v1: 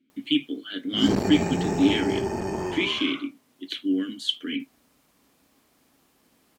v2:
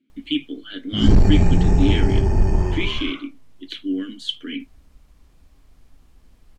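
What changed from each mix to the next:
background: remove high-pass 260 Hz 12 dB/octave; master: add treble shelf 12 kHz -12 dB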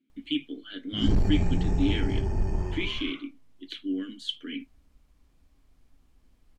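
speech -6.0 dB; background -10.0 dB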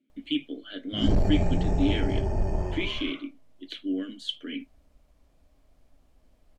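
master: add peaking EQ 610 Hz +12 dB 0.59 oct

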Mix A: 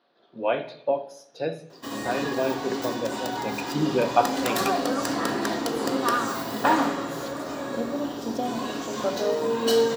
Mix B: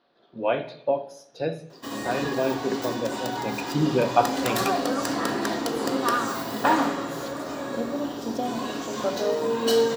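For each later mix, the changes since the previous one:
speech: remove high-pass 190 Hz 6 dB/octave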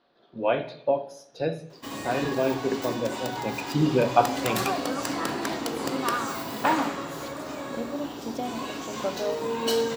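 background: send -10.0 dB; master: add bass shelf 63 Hz +6.5 dB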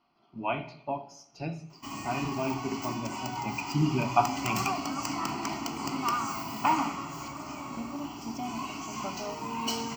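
master: add static phaser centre 2.5 kHz, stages 8

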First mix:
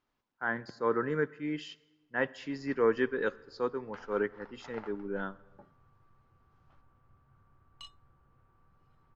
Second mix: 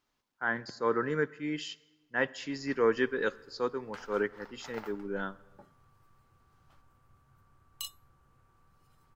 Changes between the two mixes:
background: remove distance through air 110 m; master: remove low-pass 2.2 kHz 6 dB/octave

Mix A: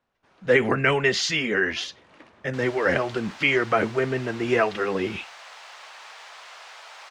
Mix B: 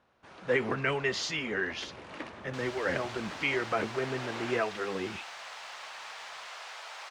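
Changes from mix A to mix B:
speech -9.0 dB; first sound +9.0 dB

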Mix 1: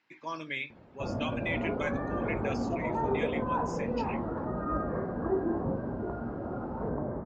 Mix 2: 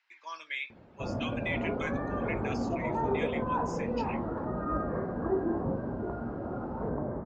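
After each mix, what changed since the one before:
speech: add high-pass 1.1 kHz 12 dB/octave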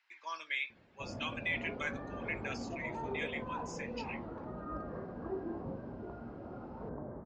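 background -10.0 dB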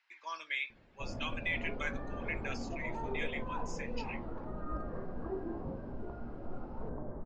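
master: remove high-pass 81 Hz 12 dB/octave

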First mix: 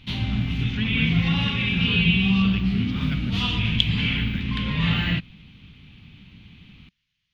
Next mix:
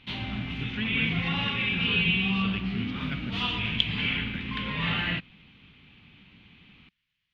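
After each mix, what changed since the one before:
background: add bass shelf 210 Hz -5.5 dB; master: add tone controls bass -7 dB, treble -12 dB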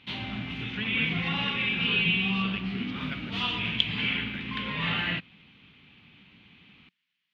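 speech: add high-pass 170 Hz 24 dB/octave; master: add high-pass 130 Hz 6 dB/octave

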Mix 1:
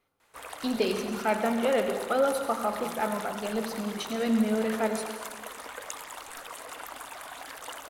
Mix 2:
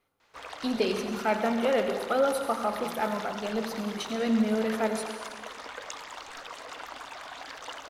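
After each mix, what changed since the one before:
background: add resonant high shelf 7.6 kHz -13.5 dB, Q 1.5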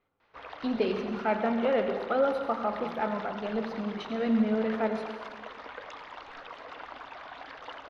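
master: add distance through air 280 m

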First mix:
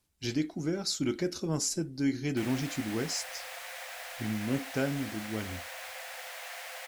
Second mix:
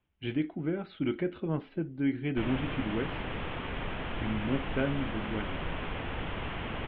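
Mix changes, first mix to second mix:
background: remove rippled Chebyshev high-pass 500 Hz, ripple 9 dB; master: add steep low-pass 3.3 kHz 72 dB/octave

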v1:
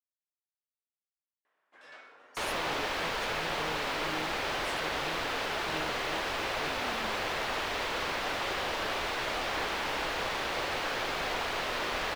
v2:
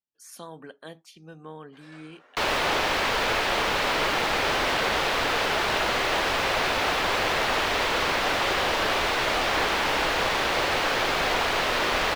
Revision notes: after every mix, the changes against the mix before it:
speech: entry -2.15 s; second sound +8.5 dB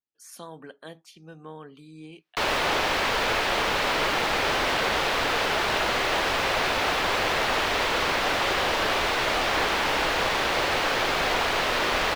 first sound: muted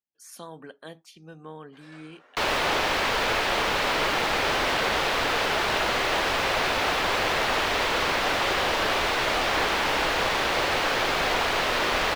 first sound: unmuted

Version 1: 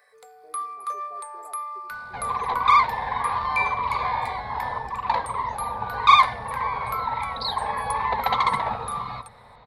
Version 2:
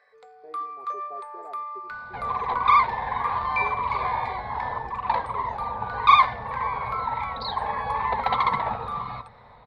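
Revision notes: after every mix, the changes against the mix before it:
speech +6.5 dB; master: add distance through air 170 m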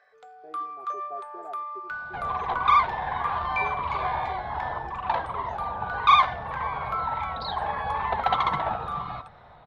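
master: remove rippled EQ curve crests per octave 0.94, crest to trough 8 dB

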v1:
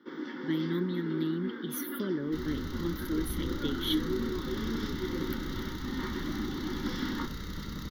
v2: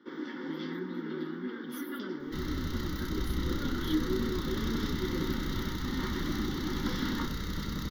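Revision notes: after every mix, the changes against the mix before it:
speech -10.5 dB; second sound +3.5 dB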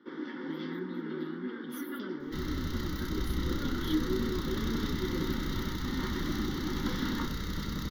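first sound: add distance through air 90 m

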